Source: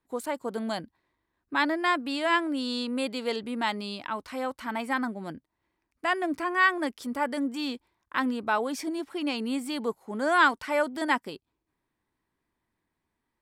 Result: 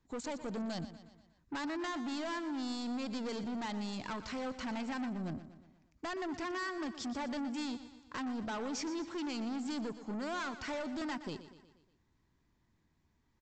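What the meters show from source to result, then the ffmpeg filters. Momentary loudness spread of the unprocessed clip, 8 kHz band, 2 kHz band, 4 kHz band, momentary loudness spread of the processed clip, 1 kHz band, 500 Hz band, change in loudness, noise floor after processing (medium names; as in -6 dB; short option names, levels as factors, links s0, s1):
11 LU, -4.0 dB, -15.5 dB, -10.0 dB, 5 LU, -13.5 dB, -11.0 dB, -10.5 dB, -75 dBFS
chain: -af "bass=f=250:g=11,treble=f=4000:g=7,acompressor=threshold=0.0398:ratio=6,aresample=16000,asoftclip=type=tanh:threshold=0.0158,aresample=44100,aecho=1:1:120|240|360|480|600:0.224|0.119|0.0629|0.0333|0.0177"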